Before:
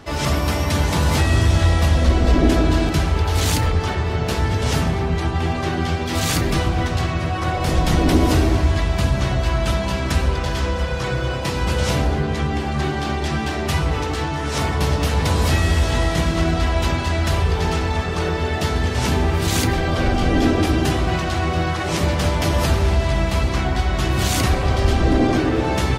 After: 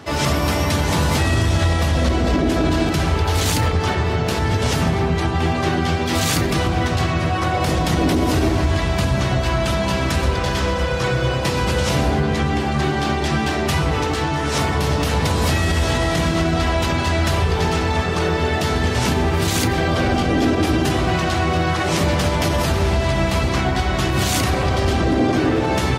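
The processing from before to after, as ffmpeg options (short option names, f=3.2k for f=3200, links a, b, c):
-filter_complex "[0:a]asettb=1/sr,asplit=3[a][b][c];[a]atrim=end=9.844[d];[b]atrim=start=9.84:end=12.54,asetpts=PTS-STARTPTS,afade=t=in:d=0.004:c=qsin,afade=t=out:st=2.696:d=0.004:c=qsin,aecho=1:1:124:0.237,atrim=end_sample=119070[e];[c]atrim=start=12.536[f];[d][e]acrossfade=d=0.004:c1=hsin:c2=qsin[g];[g][f]acrossfade=d=0.004:c1=qsin:c2=hsin,highpass=79,alimiter=limit=-12.5dB:level=0:latency=1:release=64,volume=3.5dB"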